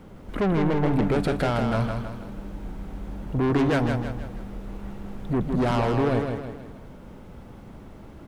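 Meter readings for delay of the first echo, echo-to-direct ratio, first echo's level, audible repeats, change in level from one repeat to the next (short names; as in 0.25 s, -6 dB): 0.16 s, -4.5 dB, -5.5 dB, 4, -7.0 dB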